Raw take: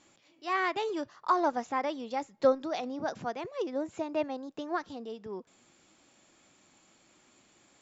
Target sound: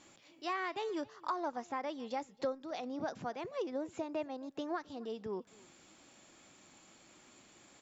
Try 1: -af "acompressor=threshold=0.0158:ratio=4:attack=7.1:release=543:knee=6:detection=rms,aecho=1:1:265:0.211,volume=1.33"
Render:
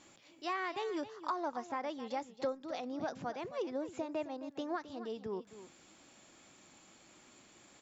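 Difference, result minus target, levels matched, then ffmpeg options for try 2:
echo-to-direct +10 dB
-af "acompressor=threshold=0.0158:ratio=4:attack=7.1:release=543:knee=6:detection=rms,aecho=1:1:265:0.0668,volume=1.33"

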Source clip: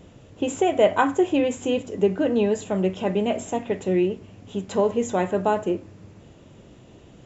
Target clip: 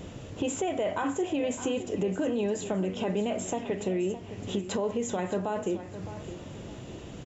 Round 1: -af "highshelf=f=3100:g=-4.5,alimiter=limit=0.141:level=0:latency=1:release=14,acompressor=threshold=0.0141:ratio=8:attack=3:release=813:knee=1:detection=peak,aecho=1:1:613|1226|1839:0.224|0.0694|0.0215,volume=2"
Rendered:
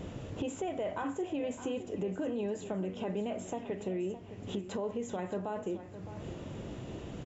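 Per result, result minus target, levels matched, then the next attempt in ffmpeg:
compression: peak gain reduction +6 dB; 8 kHz band -5.5 dB
-af "highshelf=f=3100:g=-4.5,alimiter=limit=0.141:level=0:latency=1:release=14,acompressor=threshold=0.0316:ratio=8:attack=3:release=813:knee=1:detection=peak,aecho=1:1:613|1226|1839:0.224|0.0694|0.0215,volume=2"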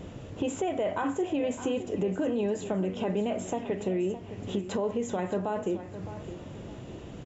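8 kHz band -6.0 dB
-af "highshelf=f=3100:g=2.5,alimiter=limit=0.141:level=0:latency=1:release=14,acompressor=threshold=0.0316:ratio=8:attack=3:release=813:knee=1:detection=peak,aecho=1:1:613|1226|1839:0.224|0.0694|0.0215,volume=2"

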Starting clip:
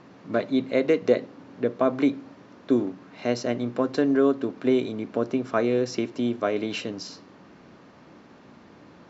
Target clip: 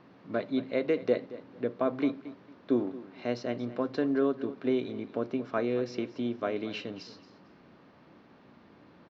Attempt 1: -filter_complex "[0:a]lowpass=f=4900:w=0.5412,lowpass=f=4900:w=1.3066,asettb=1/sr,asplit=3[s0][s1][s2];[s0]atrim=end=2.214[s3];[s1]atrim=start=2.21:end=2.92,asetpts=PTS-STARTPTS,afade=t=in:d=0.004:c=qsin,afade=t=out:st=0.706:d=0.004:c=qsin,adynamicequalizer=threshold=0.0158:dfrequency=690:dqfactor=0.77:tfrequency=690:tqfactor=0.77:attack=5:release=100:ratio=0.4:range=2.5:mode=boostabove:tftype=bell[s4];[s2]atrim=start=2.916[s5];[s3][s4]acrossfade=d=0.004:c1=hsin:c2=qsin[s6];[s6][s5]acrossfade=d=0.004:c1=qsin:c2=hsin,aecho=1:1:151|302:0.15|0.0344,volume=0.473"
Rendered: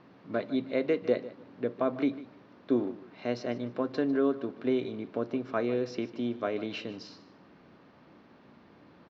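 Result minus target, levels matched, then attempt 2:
echo 74 ms early
-filter_complex "[0:a]lowpass=f=4900:w=0.5412,lowpass=f=4900:w=1.3066,asettb=1/sr,asplit=3[s0][s1][s2];[s0]atrim=end=2.214[s3];[s1]atrim=start=2.21:end=2.92,asetpts=PTS-STARTPTS,afade=t=in:d=0.004:c=qsin,afade=t=out:st=0.706:d=0.004:c=qsin,adynamicequalizer=threshold=0.0158:dfrequency=690:dqfactor=0.77:tfrequency=690:tqfactor=0.77:attack=5:release=100:ratio=0.4:range=2.5:mode=boostabove:tftype=bell[s4];[s2]atrim=start=2.916[s5];[s3][s4]acrossfade=d=0.004:c1=hsin:c2=qsin[s6];[s6][s5]acrossfade=d=0.004:c1=qsin:c2=hsin,aecho=1:1:225|450:0.15|0.0344,volume=0.473"

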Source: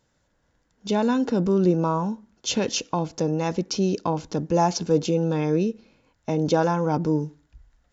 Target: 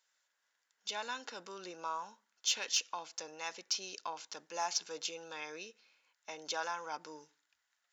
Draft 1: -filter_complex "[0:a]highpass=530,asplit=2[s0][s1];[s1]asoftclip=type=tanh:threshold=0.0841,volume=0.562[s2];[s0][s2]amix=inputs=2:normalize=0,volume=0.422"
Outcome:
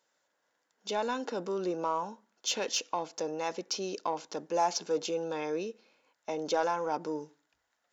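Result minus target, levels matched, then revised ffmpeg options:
500 Hz band +9.5 dB
-filter_complex "[0:a]highpass=1500,asplit=2[s0][s1];[s1]asoftclip=type=tanh:threshold=0.0841,volume=0.562[s2];[s0][s2]amix=inputs=2:normalize=0,volume=0.422"

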